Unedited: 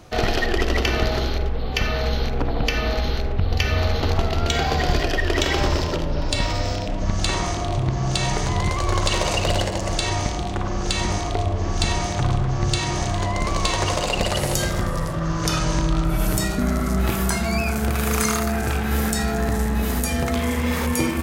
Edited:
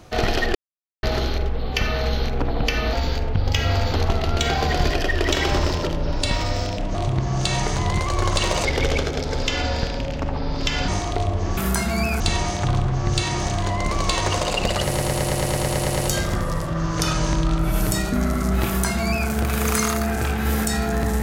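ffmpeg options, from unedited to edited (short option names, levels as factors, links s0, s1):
-filter_complex "[0:a]asplit=20[s0][s1][s2][s3][s4][s5][s6][s7][s8][s9][s10][s11][s12][s13][s14][s15][s16][s17][s18][s19];[s0]atrim=end=0.55,asetpts=PTS-STARTPTS,afade=t=out:st=0.546:d=0.004:c=hsin[s20];[s1]atrim=start=0.55:end=1.03,asetpts=PTS-STARTPTS,volume=0[s21];[s2]atrim=start=1.03:end=2.934,asetpts=PTS-STARTPTS,afade=t=in:d=0.004:c=hsin[s22];[s3]atrim=start=2.93:end=4.04,asetpts=PTS-STARTPTS,asetrate=48069,aresample=44100,atrim=end_sample=44909,asetpts=PTS-STARTPTS[s23];[s4]atrim=start=4.036:end=7.042[s24];[s5]atrim=start=7.648:end=9.354[s25];[s6]atrim=start=9.35:end=11.07,asetpts=PTS-STARTPTS,asetrate=33957,aresample=44100,atrim=end_sample=98509,asetpts=PTS-STARTPTS[s26];[s7]atrim=start=11.066:end=11.762[s27];[s8]atrim=start=17.118:end=17.752[s28];[s9]atrim=start=11.758:end=14.532[s29];[s10]atrim=start=14.418:end=14.532[s30];[s11]atrim=start=14.418:end=14.532[s31];[s12]atrim=start=14.418:end=14.532[s32];[s13]atrim=start=14.418:end=14.532[s33];[s14]atrim=start=14.418:end=14.532[s34];[s15]atrim=start=14.418:end=14.532[s35];[s16]atrim=start=14.418:end=14.532[s36];[s17]atrim=start=14.418:end=14.532[s37];[s18]atrim=start=14.418:end=14.532[s38];[s19]atrim=start=14.418[s39];[s20][s21][s22]concat=n=3:v=0:a=1[s40];[s40][s23]acrossfade=d=0.004:c1=hsin:c2=hsin[s41];[s41][s24]acrossfade=d=0.004:c1=hsin:c2=hsin[s42];[s42][s25]acrossfade=d=0.004:c1=hsin:c2=hsin[s43];[s43][s26]acrossfade=d=0.004:c1=hsin:c2=hsin[s44];[s44][s27]acrossfade=d=0.004:c1=hsin:c2=hsin[s45];[s45][s28]acrossfade=d=0.004:c1=hsin:c2=hsin[s46];[s46][s29]acrossfade=d=0.004:c1=hsin:c2=hsin[s47];[s47][s30]acrossfade=d=0.004:c1=hsin:c2=hsin[s48];[s48][s31]acrossfade=d=0.004:c1=hsin:c2=hsin[s49];[s49][s32]acrossfade=d=0.004:c1=hsin:c2=hsin[s50];[s50][s33]acrossfade=d=0.004:c1=hsin:c2=hsin[s51];[s51][s34]acrossfade=d=0.004:c1=hsin:c2=hsin[s52];[s52][s35]acrossfade=d=0.004:c1=hsin:c2=hsin[s53];[s53][s36]acrossfade=d=0.004:c1=hsin:c2=hsin[s54];[s54][s37]acrossfade=d=0.004:c1=hsin:c2=hsin[s55];[s55][s38]acrossfade=d=0.004:c1=hsin:c2=hsin[s56];[s56][s39]acrossfade=d=0.004:c1=hsin:c2=hsin"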